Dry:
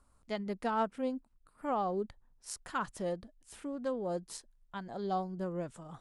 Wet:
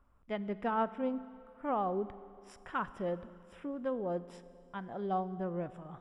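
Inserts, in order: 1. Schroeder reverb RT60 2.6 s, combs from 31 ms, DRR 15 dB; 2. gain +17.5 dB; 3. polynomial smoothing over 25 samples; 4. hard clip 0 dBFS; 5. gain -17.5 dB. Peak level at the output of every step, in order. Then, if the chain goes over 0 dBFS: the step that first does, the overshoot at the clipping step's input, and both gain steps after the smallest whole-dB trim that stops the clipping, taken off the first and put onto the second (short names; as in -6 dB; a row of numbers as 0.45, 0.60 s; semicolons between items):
-21.5, -4.0, -4.0, -4.0, -21.5 dBFS; no overload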